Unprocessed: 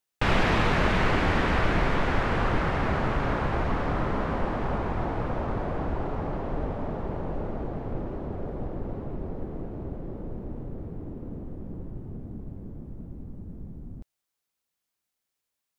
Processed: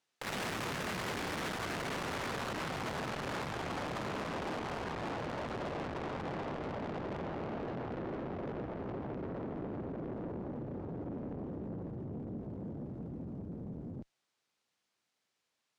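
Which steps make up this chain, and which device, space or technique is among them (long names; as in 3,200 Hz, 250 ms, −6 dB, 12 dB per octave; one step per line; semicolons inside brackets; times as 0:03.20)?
valve radio (band-pass filter 120–5,800 Hz; tube saturation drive 41 dB, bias 0.3; saturating transformer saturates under 260 Hz)
level +6.5 dB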